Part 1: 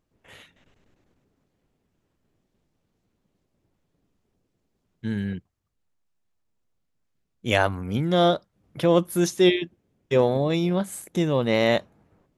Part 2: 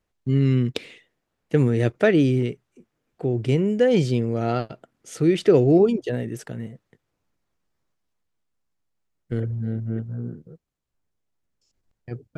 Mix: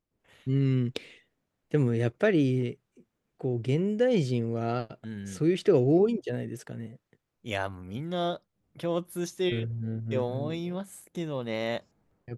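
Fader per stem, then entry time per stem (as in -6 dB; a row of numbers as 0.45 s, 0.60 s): -10.5 dB, -6.0 dB; 0.00 s, 0.20 s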